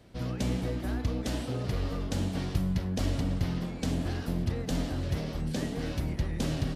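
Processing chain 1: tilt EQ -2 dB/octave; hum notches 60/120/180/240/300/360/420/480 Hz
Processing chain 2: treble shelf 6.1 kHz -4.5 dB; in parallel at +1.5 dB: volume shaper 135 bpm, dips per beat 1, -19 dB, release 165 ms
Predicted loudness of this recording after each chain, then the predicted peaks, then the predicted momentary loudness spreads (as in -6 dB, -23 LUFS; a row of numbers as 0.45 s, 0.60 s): -27.5 LUFS, -26.0 LUFS; -11.0 dBFS, -8.5 dBFS; 4 LU, 3 LU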